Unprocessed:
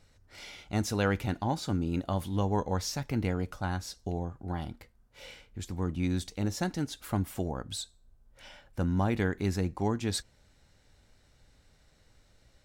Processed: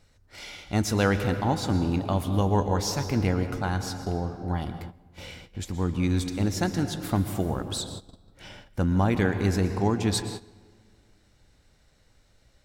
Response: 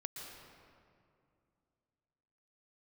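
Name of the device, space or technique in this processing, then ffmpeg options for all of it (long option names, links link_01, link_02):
keyed gated reverb: -filter_complex "[0:a]asplit=3[link_01][link_02][link_03];[1:a]atrim=start_sample=2205[link_04];[link_02][link_04]afir=irnorm=-1:irlink=0[link_05];[link_03]apad=whole_len=557486[link_06];[link_05][link_06]sidechaingate=range=-15dB:threshold=-55dB:ratio=16:detection=peak,volume=2dB[link_07];[link_01][link_07]amix=inputs=2:normalize=0"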